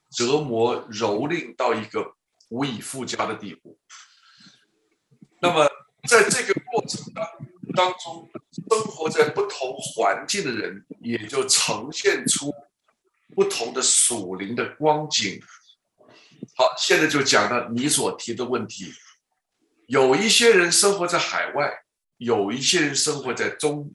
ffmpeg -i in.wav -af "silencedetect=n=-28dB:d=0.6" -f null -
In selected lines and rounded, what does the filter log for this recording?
silence_start: 3.49
silence_end: 5.43 | silence_duration: 1.94
silence_start: 12.51
silence_end: 13.38 | silence_duration: 0.87
silence_start: 15.37
silence_end: 16.43 | silence_duration: 1.06
silence_start: 18.88
silence_end: 19.91 | silence_duration: 1.03